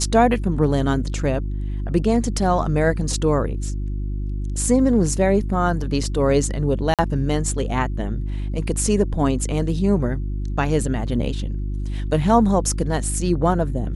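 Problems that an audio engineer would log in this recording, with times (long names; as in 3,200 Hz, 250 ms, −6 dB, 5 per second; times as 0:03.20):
mains hum 50 Hz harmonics 7 −25 dBFS
0:06.94–0:06.99: drop-out 47 ms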